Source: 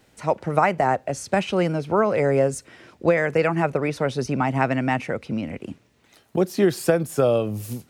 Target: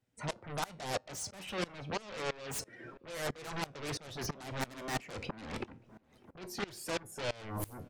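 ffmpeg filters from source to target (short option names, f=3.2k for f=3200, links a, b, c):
-filter_complex "[0:a]afftdn=nr=20:nf=-44,areverse,acompressor=threshold=-31dB:ratio=8,areverse,bandreject=f=4.2k:w=20,asplit=2[a][b];[b]aeval=exprs='0.075*sin(PI/2*8.91*val(0)/0.075)':c=same,volume=-8.5dB[c];[a][c]amix=inputs=2:normalize=0,flanger=delay=7.8:depth=3.1:regen=79:speed=0.32:shape=triangular,asplit=2[d][e];[e]adelay=596,lowpass=f=1.1k:p=1,volume=-20dB,asplit=2[f][g];[g]adelay=596,lowpass=f=1.1k:p=1,volume=0.51,asplit=2[h][i];[i]adelay=596,lowpass=f=1.1k:p=1,volume=0.51,asplit=2[j][k];[k]adelay=596,lowpass=f=1.1k:p=1,volume=0.51[l];[d][f][h][j][l]amix=inputs=5:normalize=0,aeval=exprs='val(0)*pow(10,-23*if(lt(mod(-3*n/s,1),2*abs(-3)/1000),1-mod(-3*n/s,1)/(2*abs(-3)/1000),(mod(-3*n/s,1)-2*abs(-3)/1000)/(1-2*abs(-3)/1000))/20)':c=same,volume=3dB"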